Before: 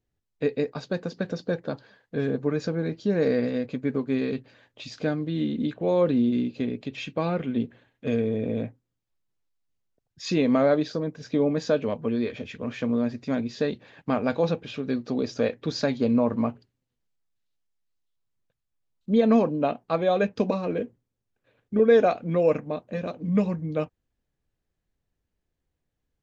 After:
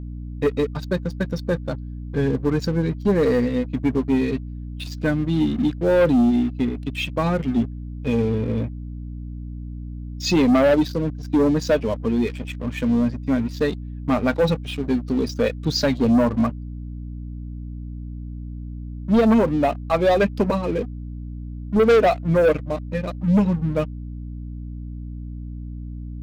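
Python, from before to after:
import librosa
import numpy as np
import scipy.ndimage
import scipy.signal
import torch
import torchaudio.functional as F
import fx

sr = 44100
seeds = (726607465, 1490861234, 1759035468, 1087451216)

y = fx.bin_expand(x, sr, power=1.5)
y = fx.leveller(y, sr, passes=3)
y = fx.add_hum(y, sr, base_hz=60, snr_db=10)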